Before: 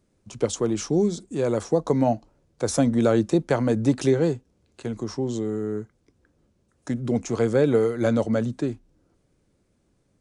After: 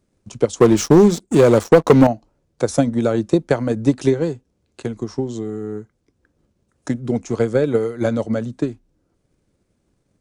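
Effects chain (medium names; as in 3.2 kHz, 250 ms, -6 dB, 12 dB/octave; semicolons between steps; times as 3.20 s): transient shaper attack +7 dB, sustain -2 dB; 0.60–2.07 s: waveshaping leveller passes 3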